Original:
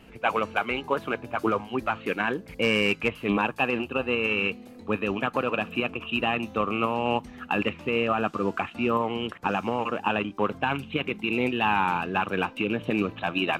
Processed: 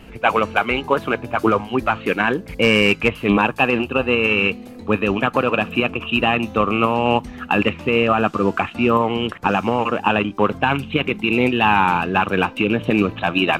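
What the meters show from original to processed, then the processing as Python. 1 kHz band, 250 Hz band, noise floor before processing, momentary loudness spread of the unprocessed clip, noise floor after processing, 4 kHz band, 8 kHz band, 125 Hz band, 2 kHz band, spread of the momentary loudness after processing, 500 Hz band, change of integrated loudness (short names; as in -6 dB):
+8.0 dB, +8.5 dB, -47 dBFS, 5 LU, -38 dBFS, +8.0 dB, n/a, +10.0 dB, +8.0 dB, 5 LU, +8.0 dB, +8.0 dB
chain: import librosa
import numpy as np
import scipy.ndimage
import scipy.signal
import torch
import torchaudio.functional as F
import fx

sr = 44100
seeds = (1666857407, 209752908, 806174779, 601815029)

y = fx.low_shelf(x, sr, hz=79.0, db=7.0)
y = F.gain(torch.from_numpy(y), 8.0).numpy()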